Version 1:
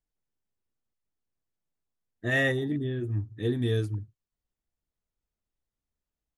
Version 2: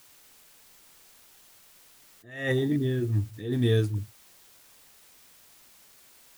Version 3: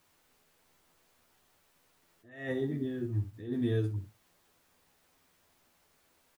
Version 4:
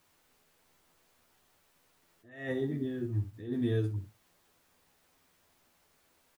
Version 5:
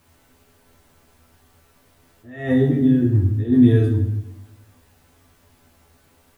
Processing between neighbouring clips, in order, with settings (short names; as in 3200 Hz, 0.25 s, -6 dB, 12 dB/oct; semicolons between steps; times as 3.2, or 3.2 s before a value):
requantised 10-bit, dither triangular; attack slew limiter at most 110 dB/s; gain +4 dB
high shelf 2300 Hz -11.5 dB; on a send: early reflections 12 ms -3.5 dB, 65 ms -9.5 dB; on the sum: gain -7 dB
nothing audible
low shelf 270 Hz +10.5 dB; reverb RT60 0.95 s, pre-delay 6 ms, DRR 0 dB; gain +7 dB